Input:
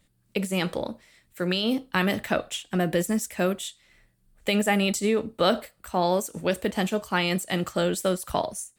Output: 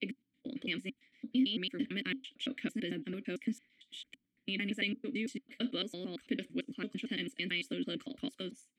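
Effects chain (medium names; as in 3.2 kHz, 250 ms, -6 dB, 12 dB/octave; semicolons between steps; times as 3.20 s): slices played last to first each 112 ms, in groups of 4; harmonic-percussive split harmonic -5 dB; vowel filter i; trim +4.5 dB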